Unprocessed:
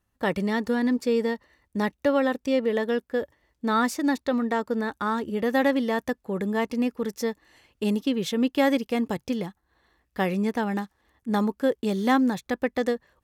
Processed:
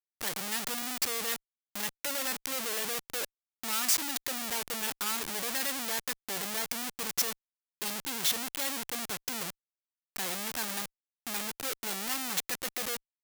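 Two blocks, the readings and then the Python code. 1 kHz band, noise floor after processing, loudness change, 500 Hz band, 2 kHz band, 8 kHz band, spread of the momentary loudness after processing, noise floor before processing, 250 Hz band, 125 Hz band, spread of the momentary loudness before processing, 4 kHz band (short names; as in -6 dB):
-10.5 dB, under -85 dBFS, -6.0 dB, -17.0 dB, -5.5 dB, +12.5 dB, 8 LU, -75 dBFS, -20.0 dB, -16.5 dB, 8 LU, +4.0 dB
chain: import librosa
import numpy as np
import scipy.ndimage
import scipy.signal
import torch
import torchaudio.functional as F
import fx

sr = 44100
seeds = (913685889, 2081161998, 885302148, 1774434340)

y = scipy.signal.sosfilt(scipy.signal.butter(2, 42.0, 'highpass', fs=sr, output='sos'), x)
y = fx.schmitt(y, sr, flips_db=-39.0)
y = fx.tilt_eq(y, sr, slope=4.0)
y = F.gain(torch.from_numpy(y), -9.0).numpy()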